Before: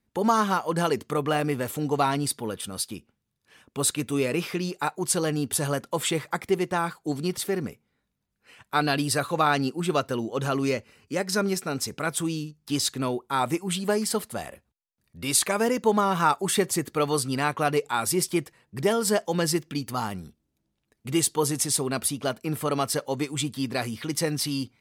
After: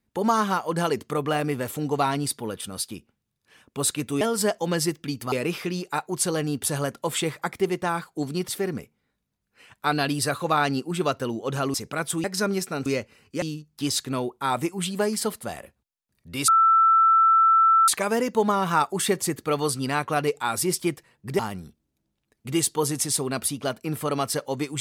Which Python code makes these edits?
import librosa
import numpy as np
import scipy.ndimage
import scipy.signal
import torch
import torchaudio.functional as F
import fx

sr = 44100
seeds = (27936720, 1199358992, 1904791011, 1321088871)

y = fx.edit(x, sr, fx.swap(start_s=10.63, length_s=0.56, other_s=11.81, other_length_s=0.5),
    fx.insert_tone(at_s=15.37, length_s=1.4, hz=1330.0, db=-14.0),
    fx.move(start_s=18.88, length_s=1.11, to_s=4.21), tone=tone)